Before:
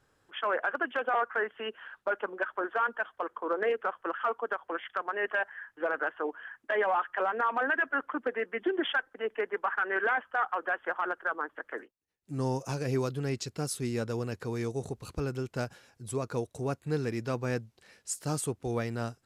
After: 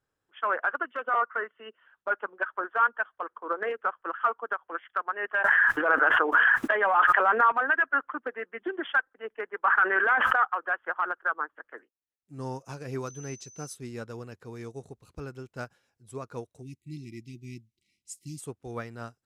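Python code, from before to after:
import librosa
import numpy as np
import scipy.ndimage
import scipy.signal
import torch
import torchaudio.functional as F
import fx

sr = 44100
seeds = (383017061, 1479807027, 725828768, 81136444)

y = fx.notch_comb(x, sr, f0_hz=820.0, at=(0.77, 1.87))
y = fx.env_flatten(y, sr, amount_pct=100, at=(5.44, 7.52))
y = fx.env_flatten(y, sr, amount_pct=100, at=(9.64, 10.36))
y = fx.dmg_tone(y, sr, hz=6100.0, level_db=-38.0, at=(13.06, 13.74), fade=0.02)
y = fx.brickwall_bandstop(y, sr, low_hz=380.0, high_hz=1900.0, at=(16.61, 18.39), fade=0.02)
y = fx.notch(y, sr, hz=4500.0, q=24.0)
y = fx.dynamic_eq(y, sr, hz=1300.0, q=1.3, threshold_db=-44.0, ratio=4.0, max_db=8)
y = fx.upward_expand(y, sr, threshold_db=-45.0, expansion=1.5)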